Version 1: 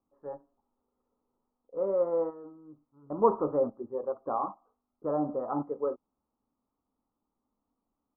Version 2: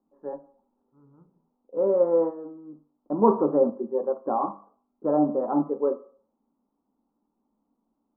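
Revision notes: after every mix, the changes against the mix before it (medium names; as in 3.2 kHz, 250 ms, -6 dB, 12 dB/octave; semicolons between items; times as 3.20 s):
second voice: entry -2.00 s; reverb: on, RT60 0.50 s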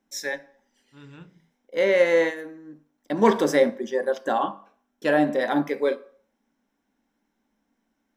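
second voice +9.5 dB; master: remove rippled Chebyshev low-pass 1.3 kHz, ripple 3 dB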